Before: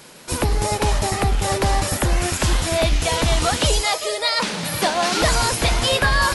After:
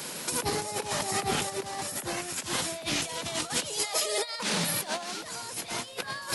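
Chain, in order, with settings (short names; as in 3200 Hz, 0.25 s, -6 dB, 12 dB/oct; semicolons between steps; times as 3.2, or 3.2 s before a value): HPF 130 Hz 24 dB/oct; high shelf 4900 Hz +6.5 dB; negative-ratio compressor -26 dBFS, ratio -0.5; limiter -15.5 dBFS, peak gain reduction 7 dB; random-step tremolo 2 Hz, depth 55%; added noise pink -72 dBFS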